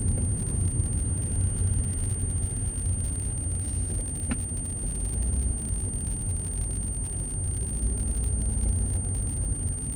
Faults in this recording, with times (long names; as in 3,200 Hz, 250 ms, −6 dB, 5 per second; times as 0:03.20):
surface crackle 81 per second −32 dBFS
whistle 8,800 Hz −33 dBFS